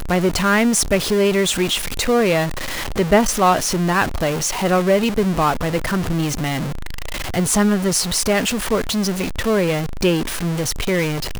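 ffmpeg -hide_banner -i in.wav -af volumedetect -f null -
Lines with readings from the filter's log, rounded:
mean_volume: -18.7 dB
max_volume: -1.9 dB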